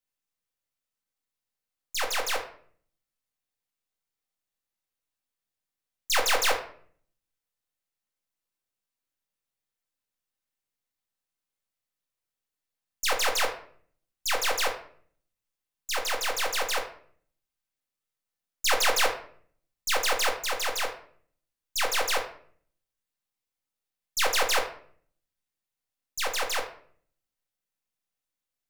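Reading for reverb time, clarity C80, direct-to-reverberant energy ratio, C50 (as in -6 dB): 0.55 s, 13.0 dB, 1.5 dB, 9.5 dB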